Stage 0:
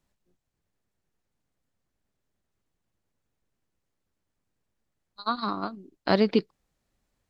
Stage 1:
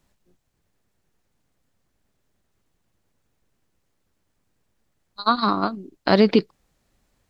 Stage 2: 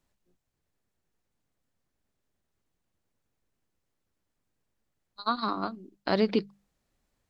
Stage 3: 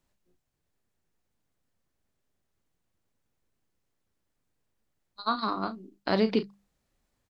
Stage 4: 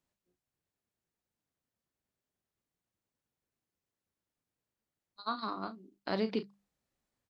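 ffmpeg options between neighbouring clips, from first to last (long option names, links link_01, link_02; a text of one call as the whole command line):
ffmpeg -i in.wav -af "alimiter=level_in=13.5dB:limit=-1dB:release=50:level=0:latency=1,volume=-4.5dB" out.wav
ffmpeg -i in.wav -af "bandreject=frequency=50:width_type=h:width=6,bandreject=frequency=100:width_type=h:width=6,bandreject=frequency=150:width_type=h:width=6,bandreject=frequency=200:width_type=h:width=6,volume=-9dB" out.wav
ffmpeg -i in.wav -filter_complex "[0:a]asplit=2[link_01][link_02];[link_02]adelay=36,volume=-10.5dB[link_03];[link_01][link_03]amix=inputs=2:normalize=0" out.wav
ffmpeg -i in.wav -af "highpass=frequency=83:poles=1,volume=-7.5dB" out.wav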